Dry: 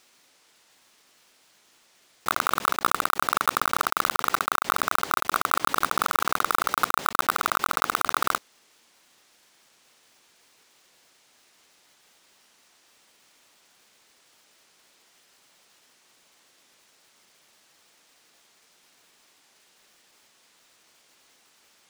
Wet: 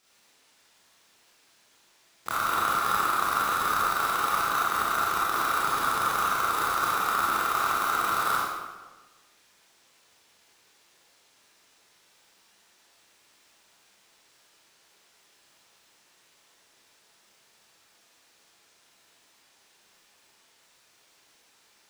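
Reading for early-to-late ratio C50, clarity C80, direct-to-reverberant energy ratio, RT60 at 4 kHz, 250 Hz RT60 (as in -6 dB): -2.5 dB, 1.0 dB, -8.0 dB, 0.95 s, 1.4 s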